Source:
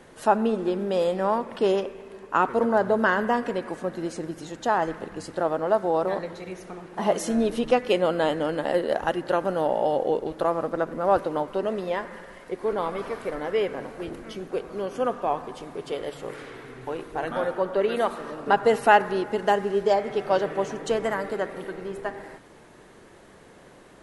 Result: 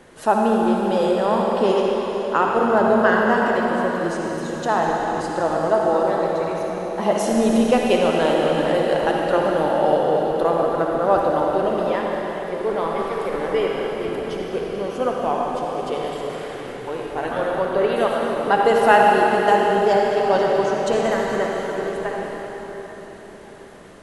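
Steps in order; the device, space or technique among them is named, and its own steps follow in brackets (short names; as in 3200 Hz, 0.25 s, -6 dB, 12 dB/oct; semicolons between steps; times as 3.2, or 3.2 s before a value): cathedral (reverb RT60 4.6 s, pre-delay 51 ms, DRR -1.5 dB); gain +2 dB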